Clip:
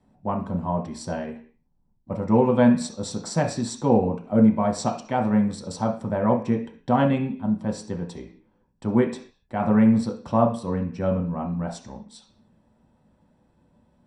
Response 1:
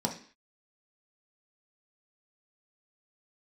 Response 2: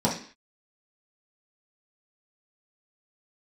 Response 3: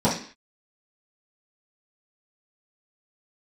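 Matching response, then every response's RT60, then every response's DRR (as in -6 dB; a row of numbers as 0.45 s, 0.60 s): 1; 0.45 s, 0.45 s, 0.45 s; 0.5 dB, -6.0 dB, -11.0 dB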